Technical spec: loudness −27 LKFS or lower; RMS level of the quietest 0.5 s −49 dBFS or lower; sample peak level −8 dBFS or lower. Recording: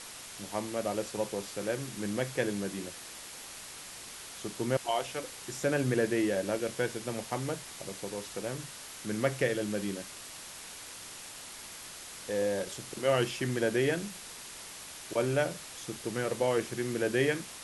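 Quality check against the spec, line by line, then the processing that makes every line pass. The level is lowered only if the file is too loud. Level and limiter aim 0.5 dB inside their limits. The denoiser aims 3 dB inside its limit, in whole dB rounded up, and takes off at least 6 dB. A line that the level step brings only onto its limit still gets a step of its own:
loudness −34.0 LKFS: in spec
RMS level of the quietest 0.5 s −46 dBFS: out of spec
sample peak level −13.5 dBFS: in spec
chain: broadband denoise 6 dB, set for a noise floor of −46 dBFS

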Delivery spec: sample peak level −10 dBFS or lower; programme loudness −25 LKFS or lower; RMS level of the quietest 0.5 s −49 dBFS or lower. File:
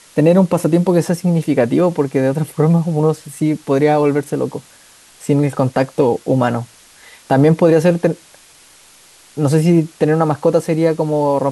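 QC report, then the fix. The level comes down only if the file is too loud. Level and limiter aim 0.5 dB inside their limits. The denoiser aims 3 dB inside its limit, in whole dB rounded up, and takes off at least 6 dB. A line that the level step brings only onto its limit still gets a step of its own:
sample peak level −2.0 dBFS: out of spec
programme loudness −15.5 LKFS: out of spec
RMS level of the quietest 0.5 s −46 dBFS: out of spec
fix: level −10 dB

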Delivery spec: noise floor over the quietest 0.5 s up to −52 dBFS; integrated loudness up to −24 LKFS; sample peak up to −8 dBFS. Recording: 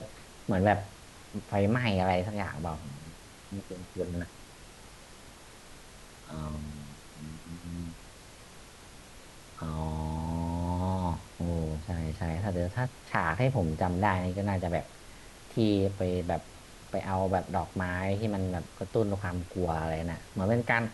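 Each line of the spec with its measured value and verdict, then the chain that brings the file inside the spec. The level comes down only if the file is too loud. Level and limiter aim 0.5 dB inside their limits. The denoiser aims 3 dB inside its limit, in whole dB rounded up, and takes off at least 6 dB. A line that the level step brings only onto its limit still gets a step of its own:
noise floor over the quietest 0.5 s −50 dBFS: out of spec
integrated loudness −32.0 LKFS: in spec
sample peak −10.5 dBFS: in spec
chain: broadband denoise 6 dB, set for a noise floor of −50 dBFS

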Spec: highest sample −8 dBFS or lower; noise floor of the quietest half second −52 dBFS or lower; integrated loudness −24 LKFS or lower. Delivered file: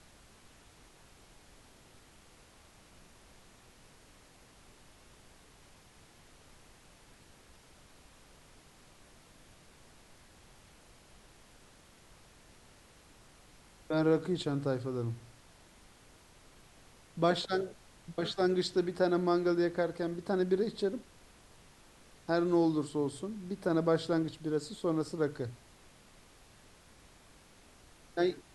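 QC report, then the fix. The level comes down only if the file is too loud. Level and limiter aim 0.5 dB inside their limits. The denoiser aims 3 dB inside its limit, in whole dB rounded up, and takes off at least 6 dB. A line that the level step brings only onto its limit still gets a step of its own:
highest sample −15.0 dBFS: in spec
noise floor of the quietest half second −59 dBFS: in spec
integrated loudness −32.5 LKFS: in spec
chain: no processing needed

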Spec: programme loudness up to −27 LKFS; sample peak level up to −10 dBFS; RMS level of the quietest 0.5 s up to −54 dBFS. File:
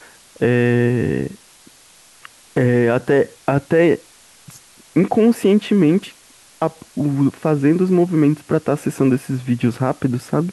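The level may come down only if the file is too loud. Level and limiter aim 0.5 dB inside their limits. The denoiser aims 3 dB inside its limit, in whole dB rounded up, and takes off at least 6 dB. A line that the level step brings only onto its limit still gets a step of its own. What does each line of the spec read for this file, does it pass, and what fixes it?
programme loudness −18.0 LKFS: out of spec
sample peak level −5.0 dBFS: out of spec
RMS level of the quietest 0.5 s −48 dBFS: out of spec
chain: level −9.5 dB

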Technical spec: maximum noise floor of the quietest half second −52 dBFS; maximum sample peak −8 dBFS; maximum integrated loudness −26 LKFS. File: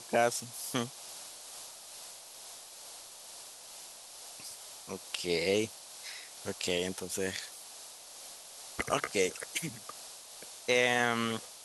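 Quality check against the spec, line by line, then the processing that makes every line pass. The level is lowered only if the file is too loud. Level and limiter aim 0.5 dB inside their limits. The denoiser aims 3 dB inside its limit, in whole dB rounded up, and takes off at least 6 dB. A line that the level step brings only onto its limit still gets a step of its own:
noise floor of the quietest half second −49 dBFS: out of spec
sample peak −13.0 dBFS: in spec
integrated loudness −34.0 LKFS: in spec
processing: broadband denoise 6 dB, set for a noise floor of −49 dBFS

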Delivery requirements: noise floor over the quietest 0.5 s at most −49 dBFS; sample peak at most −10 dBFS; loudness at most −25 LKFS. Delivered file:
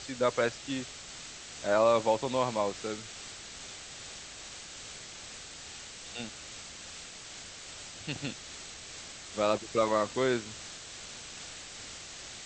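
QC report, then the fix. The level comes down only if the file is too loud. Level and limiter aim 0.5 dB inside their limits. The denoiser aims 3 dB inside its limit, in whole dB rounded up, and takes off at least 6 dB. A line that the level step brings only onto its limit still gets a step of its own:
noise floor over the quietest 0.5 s −46 dBFS: out of spec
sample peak −13.0 dBFS: in spec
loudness −34.5 LKFS: in spec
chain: broadband denoise 6 dB, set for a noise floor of −46 dBFS

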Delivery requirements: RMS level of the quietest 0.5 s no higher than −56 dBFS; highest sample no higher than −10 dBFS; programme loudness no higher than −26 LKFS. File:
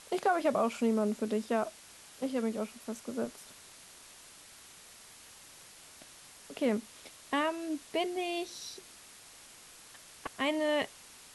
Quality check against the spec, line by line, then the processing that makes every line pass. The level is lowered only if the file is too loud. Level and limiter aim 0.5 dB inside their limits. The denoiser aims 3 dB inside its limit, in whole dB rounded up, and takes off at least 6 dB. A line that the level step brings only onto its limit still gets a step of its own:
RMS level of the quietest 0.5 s −54 dBFS: out of spec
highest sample −17.5 dBFS: in spec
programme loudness −33.5 LKFS: in spec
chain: broadband denoise 6 dB, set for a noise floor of −54 dBFS

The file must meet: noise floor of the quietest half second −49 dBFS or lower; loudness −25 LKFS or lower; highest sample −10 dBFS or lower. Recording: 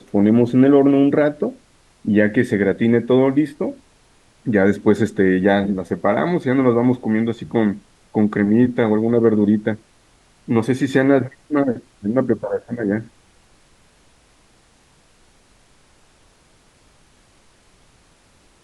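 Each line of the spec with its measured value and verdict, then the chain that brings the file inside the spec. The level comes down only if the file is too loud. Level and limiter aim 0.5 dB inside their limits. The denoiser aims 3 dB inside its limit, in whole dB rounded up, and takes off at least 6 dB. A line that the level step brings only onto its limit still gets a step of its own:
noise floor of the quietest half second −55 dBFS: in spec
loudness −18.0 LKFS: out of spec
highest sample −2.0 dBFS: out of spec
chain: level −7.5 dB
brickwall limiter −10.5 dBFS

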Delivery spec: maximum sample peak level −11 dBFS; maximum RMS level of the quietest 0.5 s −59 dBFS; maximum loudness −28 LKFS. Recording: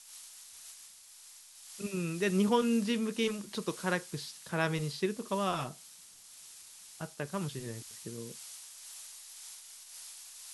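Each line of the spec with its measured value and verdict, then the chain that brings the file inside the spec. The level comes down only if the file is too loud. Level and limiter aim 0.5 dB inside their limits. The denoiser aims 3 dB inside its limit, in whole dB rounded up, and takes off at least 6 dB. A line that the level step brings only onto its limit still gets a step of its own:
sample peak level −14.5 dBFS: in spec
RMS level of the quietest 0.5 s −54 dBFS: out of spec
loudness −35.0 LKFS: in spec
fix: broadband denoise 8 dB, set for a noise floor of −54 dBFS

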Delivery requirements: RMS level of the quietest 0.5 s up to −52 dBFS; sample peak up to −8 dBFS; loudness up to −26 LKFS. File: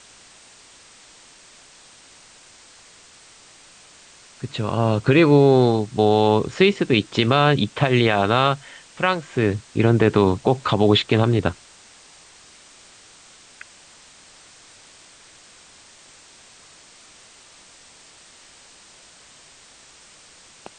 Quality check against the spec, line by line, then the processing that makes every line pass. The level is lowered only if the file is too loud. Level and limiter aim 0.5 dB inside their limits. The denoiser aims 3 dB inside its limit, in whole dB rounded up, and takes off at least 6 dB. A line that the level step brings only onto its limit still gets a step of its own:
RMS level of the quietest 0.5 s −49 dBFS: out of spec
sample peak −4.0 dBFS: out of spec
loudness −18.5 LKFS: out of spec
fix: level −8 dB

